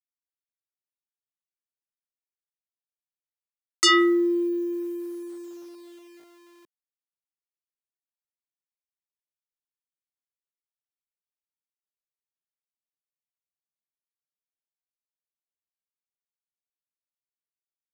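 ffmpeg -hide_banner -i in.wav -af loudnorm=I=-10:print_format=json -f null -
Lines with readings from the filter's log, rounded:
"input_i" : "-22.3",
"input_tp" : "-10.4",
"input_lra" : "18.5",
"input_thresh" : "-35.5",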